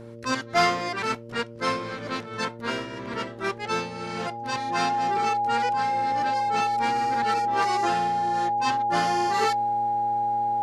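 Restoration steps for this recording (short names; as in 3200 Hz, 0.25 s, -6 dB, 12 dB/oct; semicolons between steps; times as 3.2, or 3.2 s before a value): de-hum 116 Hz, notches 5; notch 820 Hz, Q 30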